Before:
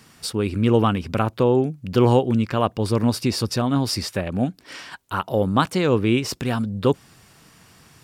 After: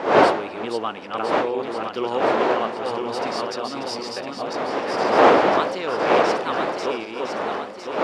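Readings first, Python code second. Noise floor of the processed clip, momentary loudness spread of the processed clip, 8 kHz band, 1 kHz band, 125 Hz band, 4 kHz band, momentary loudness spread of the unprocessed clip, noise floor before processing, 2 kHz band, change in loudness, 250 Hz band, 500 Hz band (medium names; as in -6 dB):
-35 dBFS, 12 LU, -6.5 dB, +6.5 dB, -18.0 dB, -0.5 dB, 9 LU, -53 dBFS, +6.5 dB, -0.5 dB, -6.0 dB, +2.5 dB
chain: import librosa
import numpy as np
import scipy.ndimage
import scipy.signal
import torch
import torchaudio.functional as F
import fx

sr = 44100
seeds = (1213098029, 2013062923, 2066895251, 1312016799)

y = fx.reverse_delay_fb(x, sr, ms=504, feedback_pct=70, wet_db=-3)
y = fx.dmg_wind(y, sr, seeds[0], corner_hz=610.0, level_db=-14.0)
y = fx.bandpass_edges(y, sr, low_hz=450.0, high_hz=5600.0)
y = y * librosa.db_to_amplitude(-4.5)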